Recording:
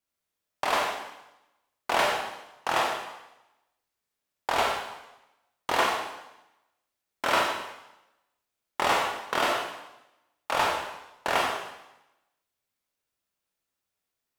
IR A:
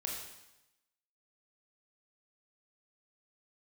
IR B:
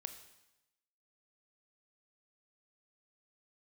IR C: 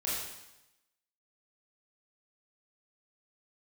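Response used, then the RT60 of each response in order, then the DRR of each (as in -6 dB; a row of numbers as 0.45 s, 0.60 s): A; 0.95 s, 0.95 s, 0.95 s; -1.5 dB, 8.0 dB, -8.0 dB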